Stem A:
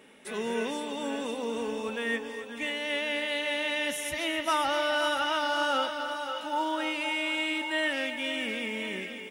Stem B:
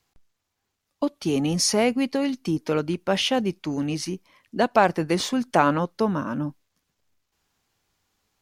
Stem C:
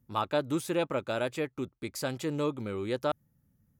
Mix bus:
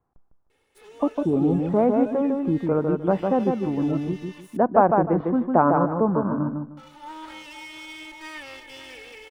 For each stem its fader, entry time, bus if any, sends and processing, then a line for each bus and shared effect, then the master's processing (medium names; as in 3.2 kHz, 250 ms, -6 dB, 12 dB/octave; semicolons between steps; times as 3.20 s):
-8.5 dB, 0.50 s, muted 4.57–6.77 s, no send, no echo send, comb filter that takes the minimum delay 2.3 ms; auto duck -10 dB, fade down 1.65 s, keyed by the second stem
+1.5 dB, 0.00 s, no send, echo send -4 dB, low-pass 1.2 kHz 24 dB/octave
-9.5 dB, 0.85 s, no send, no echo send, formants replaced by sine waves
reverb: none
echo: feedback delay 153 ms, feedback 24%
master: none